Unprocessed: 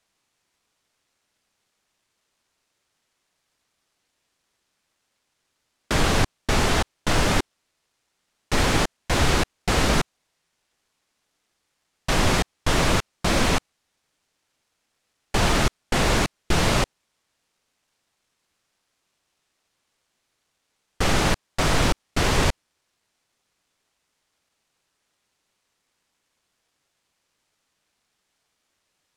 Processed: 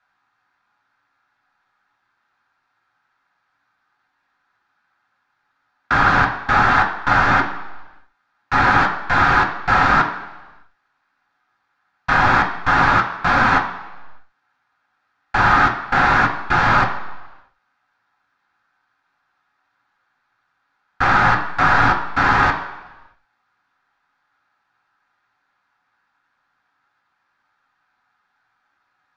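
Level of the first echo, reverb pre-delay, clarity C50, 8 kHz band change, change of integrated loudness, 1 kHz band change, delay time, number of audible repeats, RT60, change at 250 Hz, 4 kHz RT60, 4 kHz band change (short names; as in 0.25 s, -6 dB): none, 3 ms, 8.5 dB, under -10 dB, +7.0 dB, +12.5 dB, none, none, 1.1 s, +0.5 dB, 1.2 s, -4.0 dB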